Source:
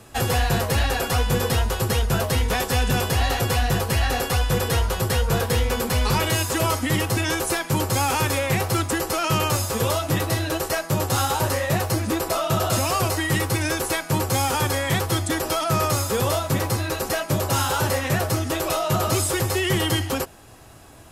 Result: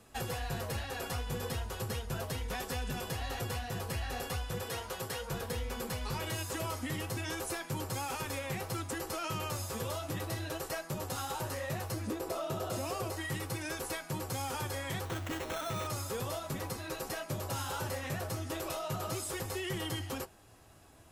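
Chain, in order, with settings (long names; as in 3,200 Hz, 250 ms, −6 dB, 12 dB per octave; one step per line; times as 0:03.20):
0:04.62–0:05.31: high-pass filter 270 Hz 6 dB per octave
0:12.07–0:13.15: parametric band 410 Hz +7.5 dB 1.5 octaves
downward compressor, threshold −21 dBFS, peak gain reduction 7 dB
flanger 0.36 Hz, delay 3.9 ms, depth 8.9 ms, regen −58%
0:15.05–0:15.87: sample-rate reduction 4,800 Hz, jitter 0%
level −8 dB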